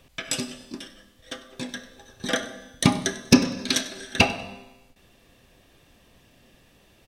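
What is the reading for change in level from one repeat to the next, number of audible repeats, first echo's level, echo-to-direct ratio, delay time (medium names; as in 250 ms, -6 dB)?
-11.0 dB, 2, -18.5 dB, -18.0 dB, 97 ms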